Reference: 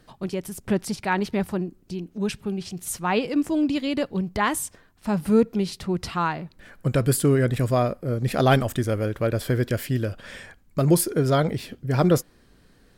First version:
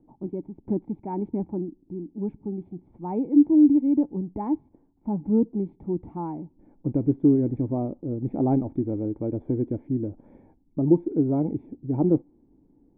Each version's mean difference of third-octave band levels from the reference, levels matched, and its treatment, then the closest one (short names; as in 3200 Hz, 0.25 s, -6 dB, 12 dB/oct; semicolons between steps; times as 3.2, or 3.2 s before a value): 13.0 dB: short-mantissa float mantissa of 4-bit; vocal tract filter u; gain +7 dB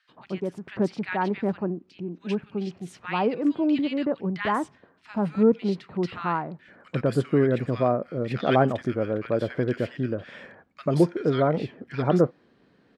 9.5 dB: BPF 170–2700 Hz; bands offset in time highs, lows 90 ms, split 1500 Hz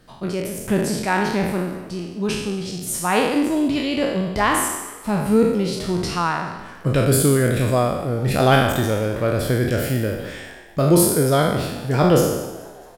7.5 dB: spectral trails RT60 1.00 s; on a send: frequency-shifting echo 0.216 s, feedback 56%, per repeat +80 Hz, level -20 dB; on the sum: gain +1.5 dB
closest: third